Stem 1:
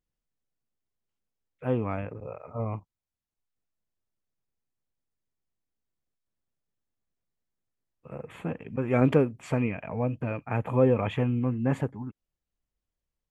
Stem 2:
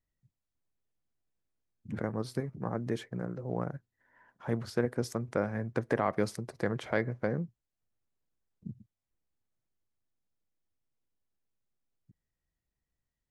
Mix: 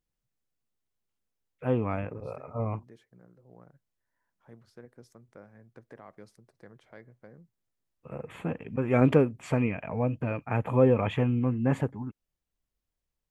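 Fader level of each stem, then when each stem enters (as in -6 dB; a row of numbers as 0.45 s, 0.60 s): +0.5 dB, -20.0 dB; 0.00 s, 0.00 s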